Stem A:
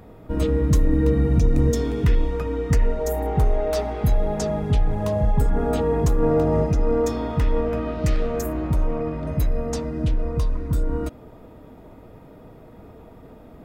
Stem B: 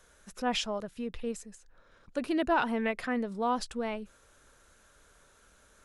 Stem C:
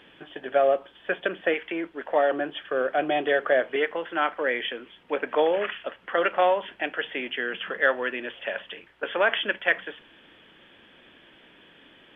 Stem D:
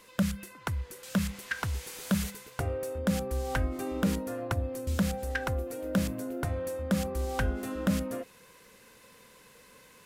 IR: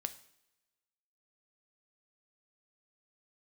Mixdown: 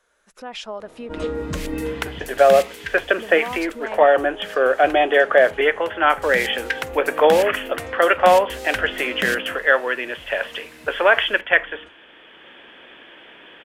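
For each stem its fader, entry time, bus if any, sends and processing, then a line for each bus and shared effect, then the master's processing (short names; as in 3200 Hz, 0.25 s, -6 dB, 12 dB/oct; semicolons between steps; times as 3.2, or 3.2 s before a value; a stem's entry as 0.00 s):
1.8 s -6 dB -> 2.48 s -19 dB, 0.80 s, no send, switching dead time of 0.055 ms; steep low-pass 9400 Hz; resonator 83 Hz, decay 0.29 s, harmonics all, mix 70%
-3.0 dB, 0.00 s, muted 1.27–3.18, no send, compressor 6:1, threshold -35 dBFS, peak gain reduction 12 dB
-2.5 dB, 1.85 s, no send, dry
-6.5 dB, 1.35 s, no send, resonant high shelf 1600 Hz +7.5 dB, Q 1.5; auto duck -14 dB, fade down 0.60 s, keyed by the second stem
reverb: off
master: tone controls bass -14 dB, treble -6 dB; AGC gain up to 13 dB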